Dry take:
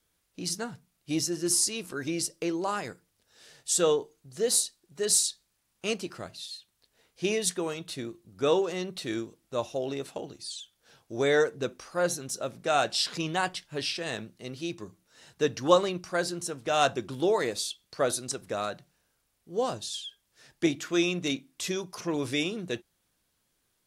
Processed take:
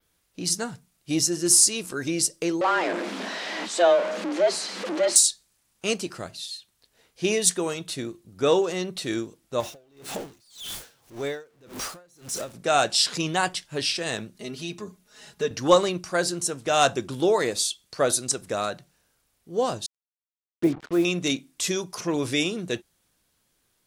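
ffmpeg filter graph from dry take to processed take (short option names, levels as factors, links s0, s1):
-filter_complex "[0:a]asettb=1/sr,asplit=3[s0][s1][s2];[s0]atrim=end=2.614[s3];[s1]atrim=start=2.61:end=5.16,asetpts=PTS-STARTPTS,afade=t=in:d=0.004:c=qsin,afade=t=out:st=2.546:d=0.004:c=qsin,aeval=exprs='val(0)+0.5*0.0473*sgn(val(0))':c=same,lowpass=2800,afreqshift=170[s4];[s2]atrim=start=5.156[s5];[s3][s4]acrossfade=d=0.004:c1=hsin:c2=qsin[s6];[s6][s5]acrossfade=d=0.004:c1=qsin:c2=hsin,asettb=1/sr,asplit=3[s7][s8][s9];[s7]atrim=end=9.604[s10];[s8]atrim=start=9.6:end=12.54,asetpts=PTS-STARTPTS,afade=t=in:d=0.004:c=qsin,afade=t=out:st=2.936:d=0.004:c=qsin,aeval=exprs='val(0)+0.5*0.0237*sgn(val(0))':c=same,acompressor=threshold=0.0251:ratio=3:attack=3.2:release=140:knee=1:detection=peak,aeval=exprs='val(0)*pow(10,-31*(0.5-0.5*cos(2*PI*1.8*n/s))/20)':c=same[s11];[s9]atrim=start=12.536[s12];[s10][s11]acrossfade=d=0.004:c1=hsin:c2=qsin[s13];[s13][s12]acrossfade=d=0.004:c1=qsin:c2=hsin,asettb=1/sr,asplit=3[s14][s15][s16];[s14]atrim=end=14.344[s17];[s15]atrim=start=14.34:end=15.51,asetpts=PTS-STARTPTS,afade=t=in:d=0.004:c=qsin,afade=t=out:st=1.166:d=0.004:c=qsin,aecho=1:1:4.8:0.93,atrim=end_sample=51597,acompressor=threshold=0.0112:ratio=1.5:attack=3.2:release=140:knee=1:detection=peak[s18];[s16]atrim=start=15.506[s19];[s17][s18]acrossfade=d=0.004:c1=hsin:c2=qsin[s20];[s20][s19]acrossfade=d=0.004:c1=qsin:c2=hsin,asettb=1/sr,asplit=3[s21][s22][s23];[s21]atrim=end=19.864[s24];[s22]atrim=start=19.86:end=21.05,asetpts=PTS-STARTPTS,afade=t=in:d=0.004:c=qsin,afade=t=out:st=1.186:d=0.004:c=qsin,lowpass=1100,acrusher=bits=6:mix=0:aa=0.5[s25];[s23]atrim=start=21.046[s26];[s24][s25]acrossfade=d=0.004:c1=hsin:c2=qsin[s27];[s27][s26]acrossfade=d=0.004:c1=qsin:c2=hsin,adynamicequalizer=threshold=0.00631:dfrequency=8000:dqfactor=1:tfrequency=8000:tqfactor=1:attack=5:release=100:ratio=0.375:range=3:mode=boostabove:tftype=bell,acontrast=42,volume=0.841"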